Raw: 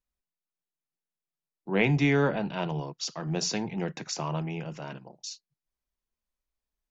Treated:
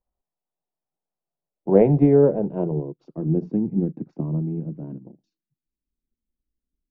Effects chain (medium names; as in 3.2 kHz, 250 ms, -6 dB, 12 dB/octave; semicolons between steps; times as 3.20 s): transient shaper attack +6 dB, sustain -3 dB; low-pass sweep 760 Hz -> 280 Hz, 1.13–3.63 s; trim +4.5 dB